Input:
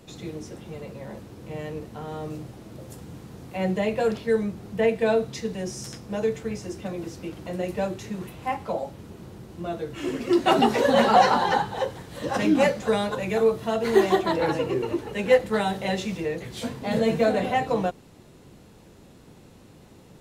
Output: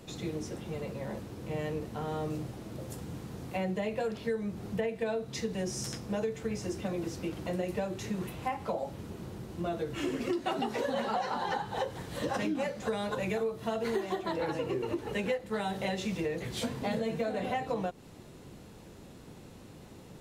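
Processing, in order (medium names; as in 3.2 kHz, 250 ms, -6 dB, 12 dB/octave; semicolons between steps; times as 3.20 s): compression 10:1, threshold -29 dBFS, peak gain reduction 17.5 dB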